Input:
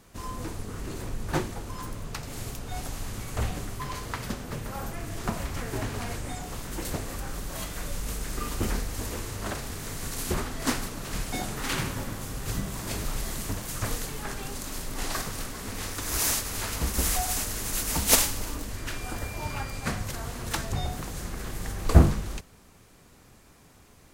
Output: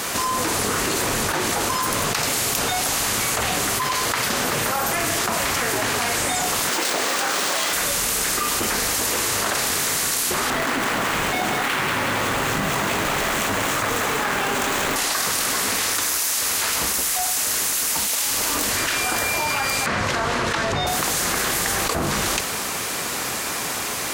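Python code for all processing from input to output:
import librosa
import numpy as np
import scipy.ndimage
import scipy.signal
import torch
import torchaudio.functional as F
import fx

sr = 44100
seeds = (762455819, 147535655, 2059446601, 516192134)

y = fx.chain(x, sr, fx.highpass(hz=260.0, slope=12),
    fx.running_max(window=3), at=(6.69, 7.73))
y = fx.chain(y, sr, fx.median_filter(points=9),
    fx.echo_split(split_hz=400.0, low_ms=86, high_ms=187, feedback_pct=52, wet_db=-6.0), at=(10.5, 14.96))
y = fx.chain(y, sr, fx.spacing_loss(db_at_10k=21),
    fx.notch(hz=760.0, q=10.0), at=(19.86, 20.87))
y = fx.highpass(y, sr, hz=920.0, slope=6)
y = fx.env_flatten(y, sr, amount_pct=100)
y = F.gain(torch.from_numpy(y), -6.0).numpy()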